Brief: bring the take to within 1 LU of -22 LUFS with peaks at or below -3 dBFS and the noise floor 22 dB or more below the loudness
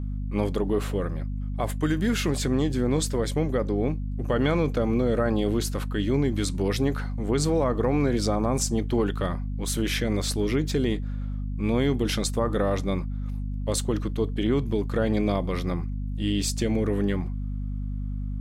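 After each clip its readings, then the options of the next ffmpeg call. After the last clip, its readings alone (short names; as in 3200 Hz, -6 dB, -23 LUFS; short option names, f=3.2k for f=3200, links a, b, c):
hum 50 Hz; harmonics up to 250 Hz; hum level -27 dBFS; loudness -26.5 LUFS; peak -12.0 dBFS; loudness target -22.0 LUFS
-> -af "bandreject=f=50:t=h:w=6,bandreject=f=100:t=h:w=6,bandreject=f=150:t=h:w=6,bandreject=f=200:t=h:w=6,bandreject=f=250:t=h:w=6"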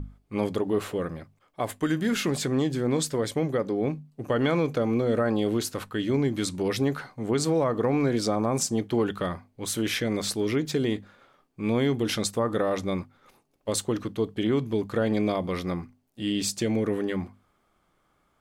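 hum none; loudness -27.5 LUFS; peak -13.0 dBFS; loudness target -22.0 LUFS
-> -af "volume=5.5dB"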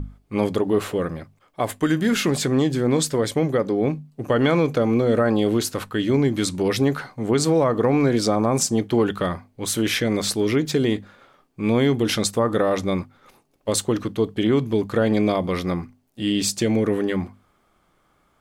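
loudness -22.0 LUFS; peak -7.5 dBFS; noise floor -64 dBFS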